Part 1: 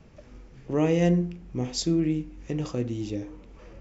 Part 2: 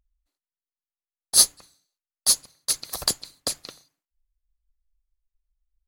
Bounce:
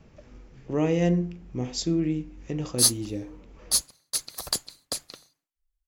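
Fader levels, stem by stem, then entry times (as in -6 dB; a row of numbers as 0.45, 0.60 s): -1.0, -4.0 dB; 0.00, 1.45 s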